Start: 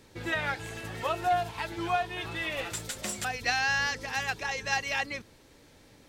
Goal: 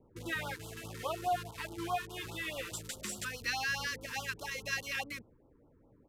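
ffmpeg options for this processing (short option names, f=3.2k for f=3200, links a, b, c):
-filter_complex "[0:a]acrossover=split=500|1200[a][b][c];[c]acrusher=bits=6:mix=0:aa=0.000001[d];[a][b][d]amix=inputs=3:normalize=0,aresample=32000,aresample=44100,afftfilt=real='re*(1-between(b*sr/1024,630*pow(2100/630,0.5+0.5*sin(2*PI*4.8*pts/sr))/1.41,630*pow(2100/630,0.5+0.5*sin(2*PI*4.8*pts/sr))*1.41))':imag='im*(1-between(b*sr/1024,630*pow(2100/630,0.5+0.5*sin(2*PI*4.8*pts/sr))/1.41,630*pow(2100/630,0.5+0.5*sin(2*PI*4.8*pts/sr))*1.41))':win_size=1024:overlap=0.75,volume=-5.5dB"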